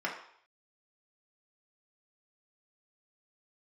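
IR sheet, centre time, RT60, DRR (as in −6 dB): 28 ms, 0.60 s, −3.5 dB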